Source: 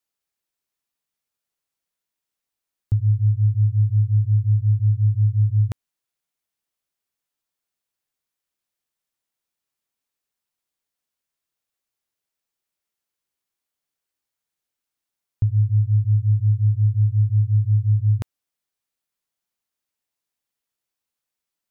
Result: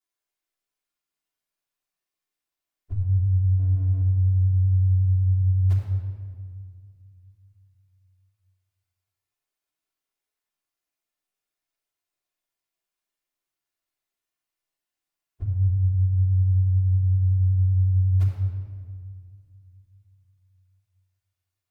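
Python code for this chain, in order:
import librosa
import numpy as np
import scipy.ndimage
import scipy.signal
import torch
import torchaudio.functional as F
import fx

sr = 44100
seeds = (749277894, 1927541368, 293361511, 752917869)

y = fx.partial_stretch(x, sr, pct=112)
y = fx.peak_eq(y, sr, hz=100.0, db=-10.5, octaves=2.5)
y = fx.backlash(y, sr, play_db=-36.5, at=(3.59, 4.02))
y = fx.room_shoebox(y, sr, seeds[0], volume_m3=3100.0, walls='mixed', distance_m=3.2)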